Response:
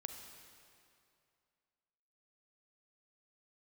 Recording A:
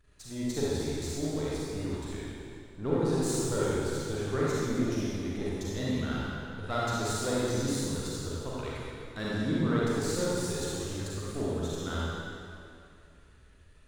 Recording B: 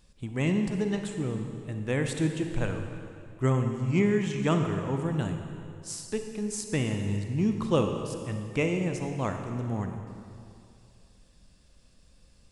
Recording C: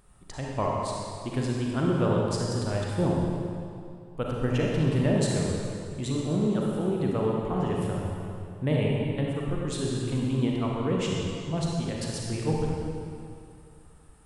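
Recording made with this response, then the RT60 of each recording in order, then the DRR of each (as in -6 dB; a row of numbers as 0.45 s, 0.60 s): B; 2.5 s, 2.5 s, 2.5 s; -7.5 dB, 5.0 dB, -3.0 dB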